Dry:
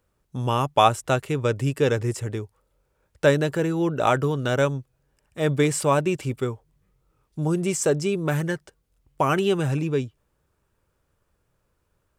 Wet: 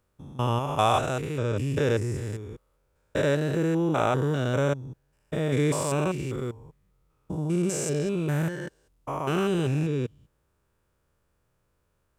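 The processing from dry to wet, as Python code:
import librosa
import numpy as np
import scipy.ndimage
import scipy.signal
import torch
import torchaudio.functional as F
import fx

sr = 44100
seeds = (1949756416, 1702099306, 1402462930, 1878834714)

y = fx.spec_steps(x, sr, hold_ms=200)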